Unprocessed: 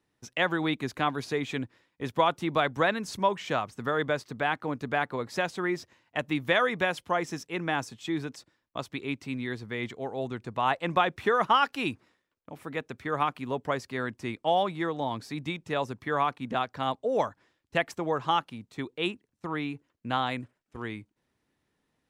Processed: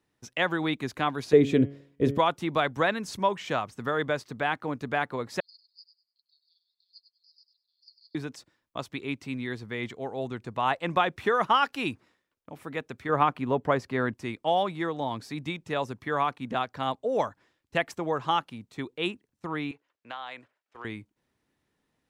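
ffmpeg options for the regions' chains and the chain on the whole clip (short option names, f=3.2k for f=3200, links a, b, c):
-filter_complex "[0:a]asettb=1/sr,asplit=3[a][b][c];[a]atrim=end=1.334[d];[b]atrim=start=1.33:end=2.18,asetpts=PTS-STARTPTS,afade=t=in:d=0.004:c=qsin,afade=t=out:st=0.846:d=0.004:c=qsin,asuperstop=centerf=820:order=4:qfactor=6.5,lowshelf=f=720:t=q:w=1.5:g=10.5,bandreject=f=140.2:t=h:w=4,bandreject=f=280.4:t=h:w=4,bandreject=f=420.6:t=h:w=4,bandreject=f=560.8:t=h:w=4,bandreject=f=701:t=h:w=4,bandreject=f=841.2:t=h:w=4,bandreject=f=981.4:t=h:w=4,bandreject=f=1.1216k:t=h:w=4,bandreject=f=1.2618k:t=h:w=4,bandreject=f=1.402k:t=h:w=4,bandreject=f=1.5422k:t=h:w=4,bandreject=f=1.6824k:t=h:w=4,bandreject=f=1.8226k:t=h:w=4,bandreject=f=1.9628k:t=h:w=4,bandreject=f=2.103k:t=h:w=4,bandreject=f=2.2432k:t=h:w=4,bandreject=f=2.3834k:t=h:w=4,bandreject=f=2.5236k:t=h:w=4,bandreject=f=2.6638k:t=h:w=4,bandreject=f=2.804k:t=h:w=4,bandreject=f=2.9442k:t=h:w=4,bandreject=f=3.0844k:t=h:w=4,bandreject=f=3.2246k:t=h:w=4,bandreject=f=3.3648k:t=h:w=4[e];[c]atrim=start=2.176[f];[d][e]acrossfade=d=0.004:c1=hsin:c2=qsin[g];[g][f]acrossfade=d=0.004:c1=qsin:c2=hsin,asettb=1/sr,asplit=3[h][i][j];[h]atrim=end=5.404[k];[i]atrim=start=5.4:end=8.15,asetpts=PTS-STARTPTS,afade=t=in:d=0.004:c=qsin,afade=t=out:st=2.746:d=0.004:c=qsin,asuperpass=centerf=4600:order=8:qfactor=6.4,aecho=1:1:99|198|297:0.316|0.0727|0.0167,atrim=end_sample=121275[l];[j]atrim=start=8.146[m];[k][l]acrossfade=d=0.004:c1=hsin:c2=qsin[n];[n][m]acrossfade=d=0.004:c1=qsin:c2=hsin,asettb=1/sr,asplit=3[o][p][q];[o]atrim=end=13.094[r];[p]atrim=start=13.09:end=14.14,asetpts=PTS-STARTPTS,afade=t=in:d=0.004:c=qsin,afade=t=out:st=1.046:d=0.004:c=qsin,highshelf=f=3k:g=-11.5,acontrast=41[s];[q]atrim=start=14.136[t];[r][s]acrossfade=d=0.004:c1=hsin:c2=qsin[u];[u][t]acrossfade=d=0.004:c1=qsin:c2=hsin,asettb=1/sr,asplit=3[v][w][x];[v]atrim=end=19.714[y];[w]atrim=start=19.71:end=20.85,asetpts=PTS-STARTPTS,afade=t=in:d=0.004:c=qsin,afade=t=out:st=1.136:d=0.004:c=qsin,acrossover=split=460 5800:gain=0.0891 1 0.224[z][aa][ab];[z][aa][ab]amix=inputs=3:normalize=0,acompressor=threshold=-35dB:ratio=4:attack=3.2:release=140:knee=1:detection=peak[ac];[x]atrim=start=20.846[ad];[y][ac]acrossfade=d=0.004:c1=hsin:c2=qsin[ae];[ae][ad]acrossfade=d=0.004:c1=qsin:c2=hsin"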